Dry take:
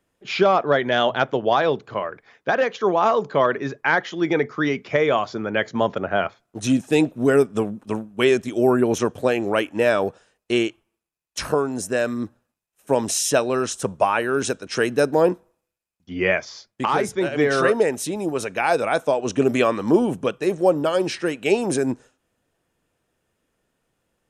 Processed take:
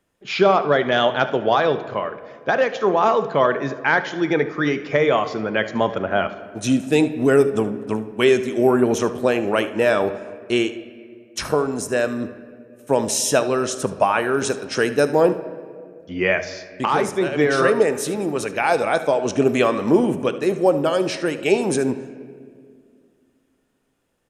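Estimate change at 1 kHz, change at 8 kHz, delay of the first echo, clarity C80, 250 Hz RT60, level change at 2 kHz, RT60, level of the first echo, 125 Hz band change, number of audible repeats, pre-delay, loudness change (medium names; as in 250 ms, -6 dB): +1.5 dB, +1.0 dB, 74 ms, 14.5 dB, 2.8 s, +1.5 dB, 2.1 s, -16.0 dB, +1.5 dB, 1, 5 ms, +1.5 dB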